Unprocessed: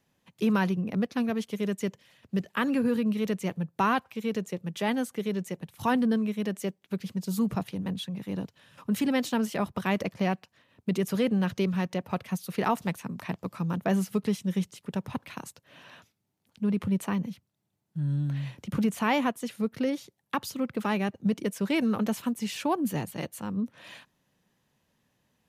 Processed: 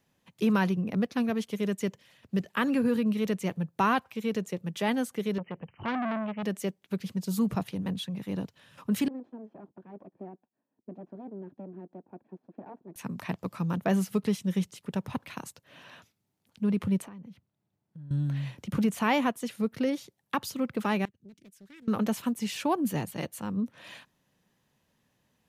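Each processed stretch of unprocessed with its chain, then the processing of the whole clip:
5.38–6.43 s: brick-wall FIR low-pass 3.1 kHz + dynamic bell 750 Hz, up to -6 dB, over -41 dBFS, Q 1.6 + transformer saturation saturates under 1.4 kHz
9.08–12.96 s: comb filter that takes the minimum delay 1.2 ms + ladder band-pass 340 Hz, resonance 45%
17.02–18.11 s: treble shelf 3.2 kHz -11.5 dB + compression 5:1, threshold -44 dBFS
21.05–21.88 s: amplifier tone stack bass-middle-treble 6-0-2 + compression 1.5:1, threshold -57 dBFS + loudspeaker Doppler distortion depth 0.66 ms
whole clip: none

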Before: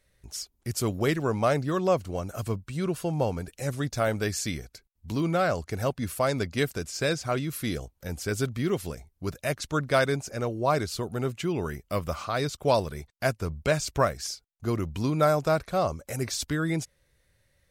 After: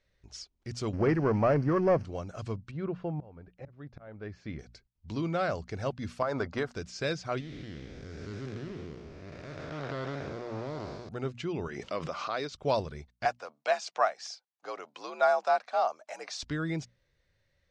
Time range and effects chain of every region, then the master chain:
0.93–2.05 s: zero-crossing glitches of -28 dBFS + waveshaping leveller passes 2 + boxcar filter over 12 samples
2.71–4.59 s: low-pass 1.7 kHz + slow attack 606 ms
6.22–6.73 s: FFT filter 180 Hz 0 dB, 950 Hz +14 dB, 1.4 kHz +12 dB, 2.4 kHz -1 dB + compression 12:1, threshold -20 dBFS
7.40–11.09 s: spectral blur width 477 ms + treble shelf 10 kHz -9.5 dB + loudspeaker Doppler distortion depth 0.23 ms
11.68–12.52 s: band-pass 260–7300 Hz + swell ahead of each attack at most 40 dB/s
13.25–16.43 s: resonant high-pass 670 Hz, resonance Q 1.8 + frequency shift +63 Hz
whole clip: low-pass 5.9 kHz 24 dB/octave; hum notches 60/120/180/240 Hz; trim -5 dB

